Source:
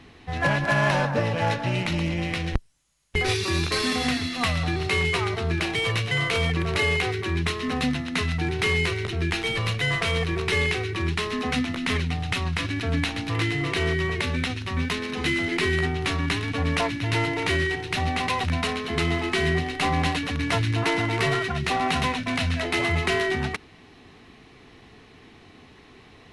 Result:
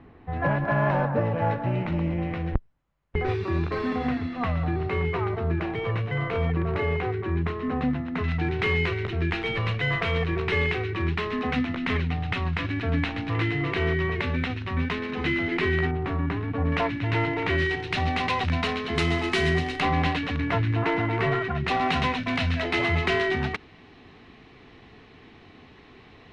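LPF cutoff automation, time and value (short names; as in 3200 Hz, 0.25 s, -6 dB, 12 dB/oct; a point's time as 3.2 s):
1300 Hz
from 8.24 s 2500 Hz
from 15.91 s 1200 Hz
from 16.72 s 2400 Hz
from 17.58 s 4300 Hz
from 18.95 s 7800 Hz
from 19.8 s 3300 Hz
from 20.4 s 2000 Hz
from 21.68 s 4000 Hz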